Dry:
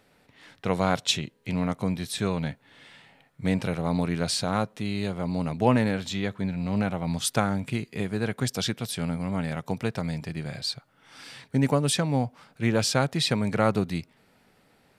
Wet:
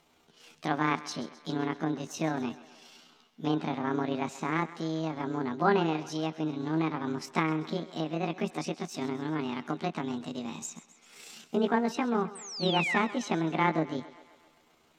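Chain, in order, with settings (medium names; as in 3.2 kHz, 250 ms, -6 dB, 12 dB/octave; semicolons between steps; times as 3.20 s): rotating-head pitch shifter +8 st; painted sound fall, 12.35–12.98 s, 1.7–8.7 kHz -27 dBFS; low-pass that closes with the level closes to 3 kHz, closed at -25 dBFS; on a send: thinning echo 131 ms, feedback 62%, high-pass 300 Hz, level -16.5 dB; on the sum: trim -2.5 dB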